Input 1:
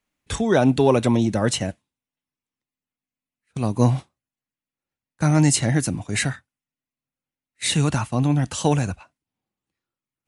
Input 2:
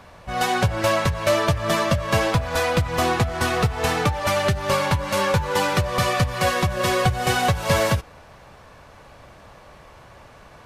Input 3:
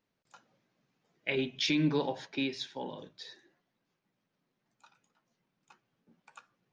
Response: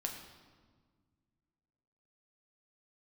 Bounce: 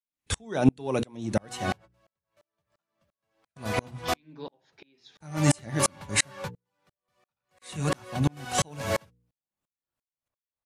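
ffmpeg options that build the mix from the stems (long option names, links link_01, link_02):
-filter_complex "[0:a]highshelf=frequency=3900:gain=4,volume=1dB,asplit=2[link_01][link_02];[1:a]acrossover=split=150[link_03][link_04];[link_03]acompressor=threshold=-32dB:ratio=6[link_05];[link_05][link_04]amix=inputs=2:normalize=0,asoftclip=type=hard:threshold=-9.5dB,adelay=1100,volume=-2.5dB[link_06];[2:a]adelay=2450,volume=-3.5dB[link_07];[link_02]apad=whole_len=518309[link_08];[link_06][link_08]sidechaingate=range=-40dB:threshold=-43dB:ratio=16:detection=peak[link_09];[link_01][link_09][link_07]amix=inputs=3:normalize=0,bandreject=frequency=60:width_type=h:width=6,bandreject=frequency=120:width_type=h:width=6,bandreject=frequency=180:width_type=h:width=6,bandreject=frequency=240:width_type=h:width=6,bandreject=frequency=300:width_type=h:width=6,bandreject=frequency=360:width_type=h:width=6,bandreject=frequency=420:width_type=h:width=6,bandreject=frequency=480:width_type=h:width=6,aeval=exprs='val(0)*pow(10,-37*if(lt(mod(-2.9*n/s,1),2*abs(-2.9)/1000),1-mod(-2.9*n/s,1)/(2*abs(-2.9)/1000),(mod(-2.9*n/s,1)-2*abs(-2.9)/1000)/(1-2*abs(-2.9)/1000))/20)':channel_layout=same"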